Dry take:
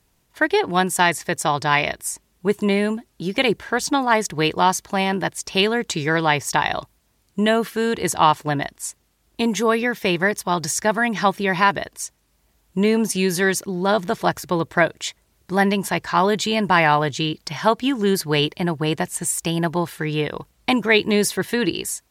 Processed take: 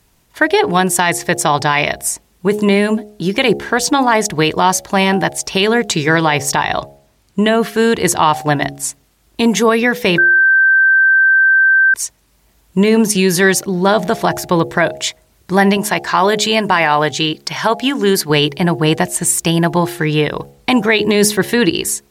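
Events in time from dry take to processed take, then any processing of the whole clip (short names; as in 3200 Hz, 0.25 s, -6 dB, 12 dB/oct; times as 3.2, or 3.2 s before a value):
6.64–7.74 high shelf 8300 Hz -6 dB
10.18–11.94 bleep 1560 Hz -15.5 dBFS
15.77–18.3 low shelf 200 Hz -9.5 dB
whole clip: de-hum 69.9 Hz, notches 12; maximiser +9.5 dB; gain -1 dB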